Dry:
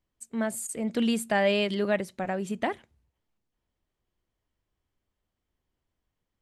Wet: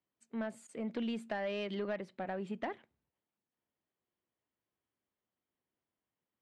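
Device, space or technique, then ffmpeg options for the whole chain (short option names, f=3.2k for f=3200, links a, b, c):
AM radio: -filter_complex "[0:a]highpass=170,lowpass=3.2k,acompressor=threshold=-26dB:ratio=10,asoftclip=type=tanh:threshold=-22dB,asettb=1/sr,asplit=3[a][b][c];[a]atrim=end=2.104[d];[b]atrim=start=2.1:end=2.53,asetpts=PTS-STARTPTS,afade=t=in:d=0.004:c=qsin,afade=t=out:st=0.426:d=0.004:c=qsin,bandreject=f=6.1k:w=6.1[e];[c]atrim=start=2.526[f];[d][e]acrossfade=d=0.004:c1=hsin:c2=qsin[g];[g][f]acrossfade=d=0.004:c1=qsin:c2=hsin,volume=-5.5dB"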